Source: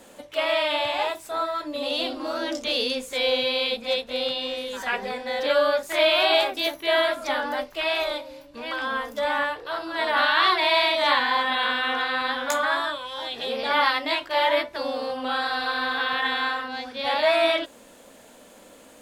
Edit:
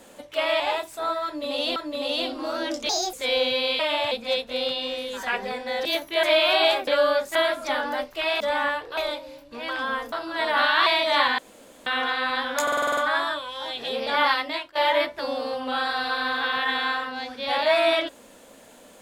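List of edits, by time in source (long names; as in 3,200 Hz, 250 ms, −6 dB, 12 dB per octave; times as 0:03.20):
0:00.60–0:00.92: move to 0:03.71
0:01.57–0:02.08: repeat, 2 plays
0:02.70–0:03.05: play speed 144%
0:05.45–0:05.93: swap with 0:06.57–0:06.95
0:09.15–0:09.72: move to 0:08.00
0:10.46–0:10.78: remove
0:11.30–0:11.78: fill with room tone
0:12.54: stutter 0.05 s, 8 plays
0:13.77–0:14.32: fade out equal-power, to −18.5 dB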